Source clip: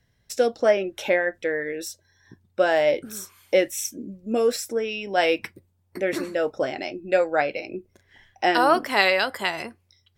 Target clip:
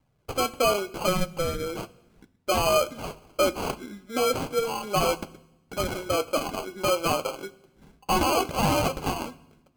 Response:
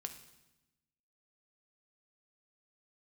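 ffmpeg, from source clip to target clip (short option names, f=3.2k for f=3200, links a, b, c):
-filter_complex "[0:a]lowshelf=f=370:g=-7.5,acrusher=samples=25:mix=1:aa=0.000001,alimiter=limit=-16.5dB:level=0:latency=1:release=12,flanger=delay=1:depth=7:regen=-40:speed=0.33:shape=triangular,asplit=2[a][b];[1:a]atrim=start_sample=2205[c];[b][c]afir=irnorm=-1:irlink=0,volume=-2.5dB[d];[a][d]amix=inputs=2:normalize=0,asetrate=45938,aresample=44100,volume=1.5dB"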